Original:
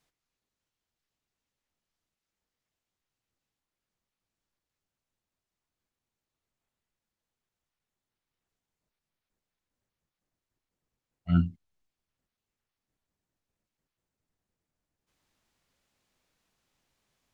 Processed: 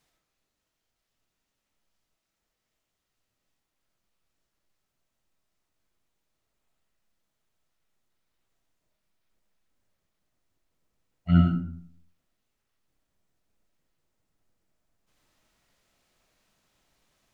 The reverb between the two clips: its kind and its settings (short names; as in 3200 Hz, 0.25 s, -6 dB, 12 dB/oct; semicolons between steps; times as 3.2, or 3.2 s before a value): digital reverb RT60 0.61 s, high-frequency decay 0.5×, pre-delay 35 ms, DRR 1 dB; gain +4 dB